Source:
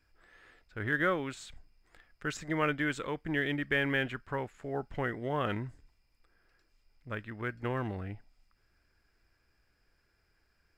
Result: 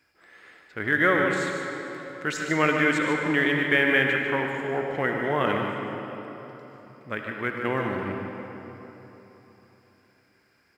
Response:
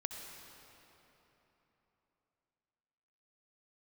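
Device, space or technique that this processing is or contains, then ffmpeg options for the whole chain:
PA in a hall: -filter_complex "[0:a]highpass=170,equalizer=frequency=2100:width_type=o:width=0.23:gain=5,aecho=1:1:148:0.355[link_01];[1:a]atrim=start_sample=2205[link_02];[link_01][link_02]afir=irnorm=-1:irlink=0,volume=9dB"

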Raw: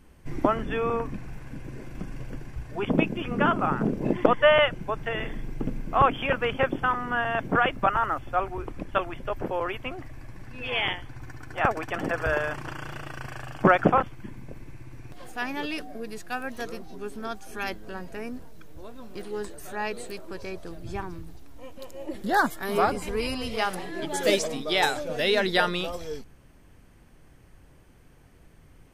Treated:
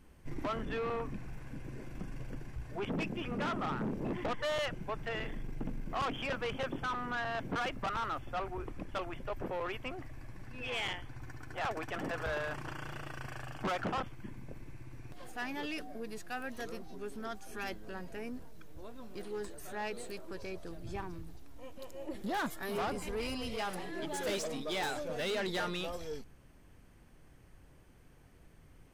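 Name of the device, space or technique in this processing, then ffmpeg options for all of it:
saturation between pre-emphasis and de-emphasis: -af "highshelf=frequency=6200:gain=7.5,asoftclip=type=tanh:threshold=-26dB,highshelf=frequency=6200:gain=-7.5,volume=-5dB"

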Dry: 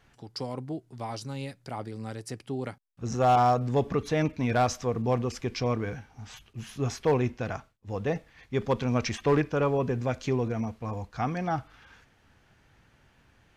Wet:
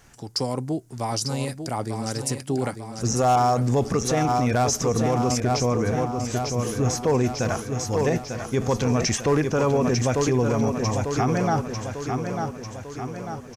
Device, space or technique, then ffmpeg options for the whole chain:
over-bright horn tweeter: -filter_complex "[0:a]highshelf=frequency=4800:width_type=q:width=1.5:gain=8.5,aecho=1:1:896|1792|2688|3584|4480|5376|6272:0.398|0.219|0.12|0.0662|0.0364|0.02|0.011,alimiter=limit=-21.5dB:level=0:latency=1:release=31,asettb=1/sr,asplit=3[link_01][link_02][link_03];[link_01]atrim=end=5.404[link_04];[link_02]atrim=start=5.4:end=7.24,asetpts=PTS-STARTPTS,afade=type=in:duration=0.004:curve=qsin,afade=type=out:start_time=1.836:duration=0.004:curve=qsin,adynamicequalizer=threshold=0.00562:dfrequency=1700:dqfactor=0.7:tfrequency=1700:tqfactor=0.7:attack=5:release=100:ratio=0.375:range=2:mode=cutabove:tftype=highshelf[link_05];[link_03]atrim=start=7.236[link_06];[link_04][link_05]acrossfade=duration=0.004:curve1=hsin:curve2=qsin[link_07];[link_07][link_06]acrossfade=duration=0.004:curve1=qsin:curve2=hsin,volume=8dB"

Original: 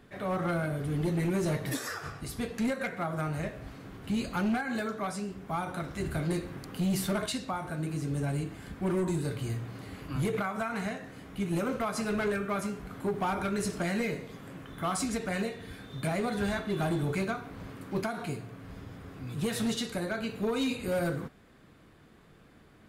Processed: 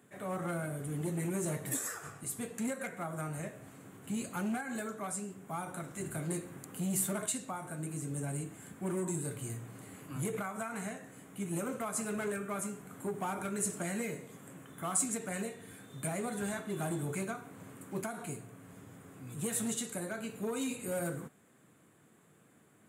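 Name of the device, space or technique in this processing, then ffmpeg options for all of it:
budget condenser microphone: -af "highpass=frequency=110:width=0.5412,highpass=frequency=110:width=1.3066,highshelf=frequency=6200:width_type=q:width=3:gain=8,volume=-6dB"

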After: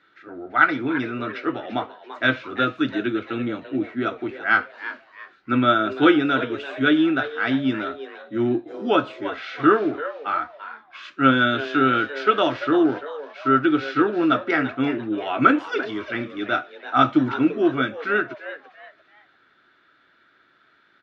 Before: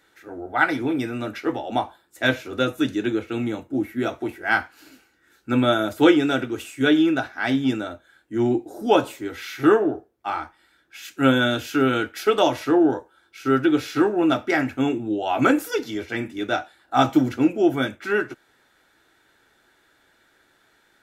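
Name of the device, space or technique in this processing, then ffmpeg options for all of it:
frequency-shifting delay pedal into a guitar cabinet: -filter_complex "[0:a]asplit=4[link_01][link_02][link_03][link_04];[link_02]adelay=340,afreqshift=140,volume=-12.5dB[link_05];[link_03]adelay=680,afreqshift=280,volume=-21.9dB[link_06];[link_04]adelay=1020,afreqshift=420,volume=-31.2dB[link_07];[link_01][link_05][link_06][link_07]amix=inputs=4:normalize=0,highpass=85,equalizer=frequency=86:width_type=q:width=4:gain=-9,equalizer=frequency=480:width_type=q:width=4:gain=-5,equalizer=frequency=840:width_type=q:width=4:gain=-8,equalizer=frequency=1300:width_type=q:width=4:gain=8,lowpass=frequency=4100:width=0.5412,lowpass=frequency=4100:width=1.3066"

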